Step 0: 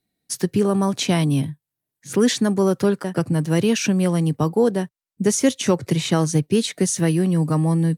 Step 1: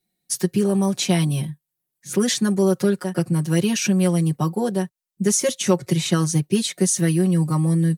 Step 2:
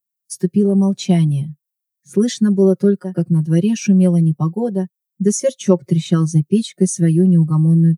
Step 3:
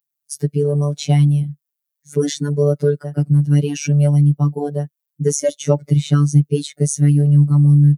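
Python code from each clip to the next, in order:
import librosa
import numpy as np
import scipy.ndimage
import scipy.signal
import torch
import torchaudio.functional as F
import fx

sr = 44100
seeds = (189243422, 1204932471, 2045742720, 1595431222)

y1 = fx.high_shelf(x, sr, hz=5200.0, db=7.0)
y1 = y1 + 0.96 * np.pad(y1, (int(5.5 * sr / 1000.0), 0))[:len(y1)]
y1 = F.gain(torch.from_numpy(y1), -5.0).numpy()
y2 = fx.dmg_noise_colour(y1, sr, seeds[0], colour='violet', level_db=-58.0)
y2 = fx.spectral_expand(y2, sr, expansion=1.5)
y2 = F.gain(torch.from_numpy(y2), 4.5).numpy()
y3 = fx.robotise(y2, sr, hz=145.0)
y3 = F.gain(torch.from_numpy(y3), 2.5).numpy()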